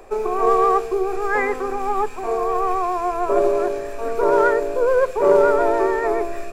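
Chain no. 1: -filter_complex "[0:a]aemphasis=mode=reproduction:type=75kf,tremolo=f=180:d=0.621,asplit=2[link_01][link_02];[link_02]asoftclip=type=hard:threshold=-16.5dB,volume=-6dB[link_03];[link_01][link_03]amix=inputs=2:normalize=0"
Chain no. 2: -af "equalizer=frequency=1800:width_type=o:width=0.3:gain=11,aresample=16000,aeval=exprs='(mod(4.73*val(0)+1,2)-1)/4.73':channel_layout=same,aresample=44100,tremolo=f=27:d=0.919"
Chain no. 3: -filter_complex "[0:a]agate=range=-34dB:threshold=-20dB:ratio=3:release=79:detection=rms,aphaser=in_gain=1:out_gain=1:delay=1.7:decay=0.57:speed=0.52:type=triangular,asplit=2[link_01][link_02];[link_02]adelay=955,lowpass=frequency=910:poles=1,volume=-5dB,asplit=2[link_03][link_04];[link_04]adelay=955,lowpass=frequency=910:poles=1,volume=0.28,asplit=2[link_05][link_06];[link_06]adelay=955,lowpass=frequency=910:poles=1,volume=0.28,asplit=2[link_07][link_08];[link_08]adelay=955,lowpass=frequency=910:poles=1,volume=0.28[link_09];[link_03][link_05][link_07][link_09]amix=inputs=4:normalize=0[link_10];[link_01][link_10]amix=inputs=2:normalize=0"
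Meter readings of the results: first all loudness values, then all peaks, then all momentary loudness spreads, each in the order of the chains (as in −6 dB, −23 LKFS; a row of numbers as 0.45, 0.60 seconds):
−20.0, −23.5, −19.0 LKFS; −3.5, −10.0, −2.0 dBFS; 7, 6, 8 LU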